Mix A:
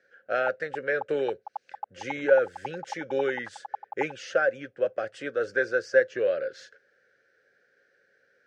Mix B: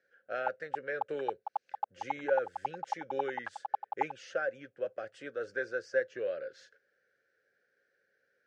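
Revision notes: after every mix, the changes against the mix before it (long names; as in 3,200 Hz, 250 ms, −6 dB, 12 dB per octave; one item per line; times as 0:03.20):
speech −9.5 dB
background: remove high-frequency loss of the air 350 metres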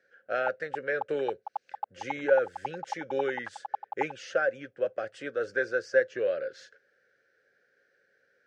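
speech +6.5 dB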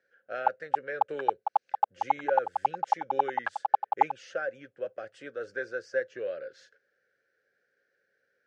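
speech −6.0 dB
background +9.5 dB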